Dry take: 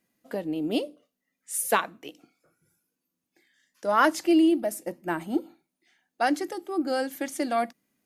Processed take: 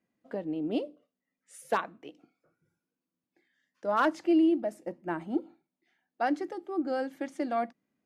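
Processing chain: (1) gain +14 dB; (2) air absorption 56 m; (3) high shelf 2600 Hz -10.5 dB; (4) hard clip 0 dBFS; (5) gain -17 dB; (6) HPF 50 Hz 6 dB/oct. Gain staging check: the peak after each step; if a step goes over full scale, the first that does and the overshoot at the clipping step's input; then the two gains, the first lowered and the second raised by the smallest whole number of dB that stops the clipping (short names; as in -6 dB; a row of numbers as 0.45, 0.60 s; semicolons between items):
+7.5, +7.0, +5.0, 0.0, -17.0, -16.5 dBFS; step 1, 5.0 dB; step 1 +9 dB, step 5 -12 dB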